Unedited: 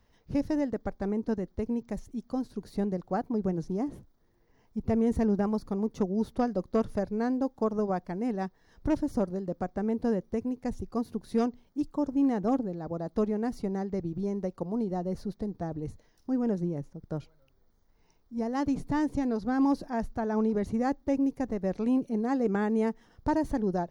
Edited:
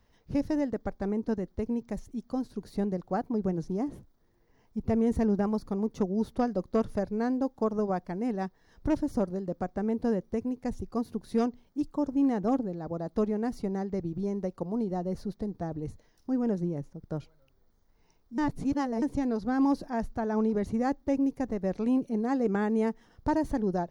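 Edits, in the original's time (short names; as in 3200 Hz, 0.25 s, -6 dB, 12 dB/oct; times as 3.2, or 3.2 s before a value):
18.38–19.02 reverse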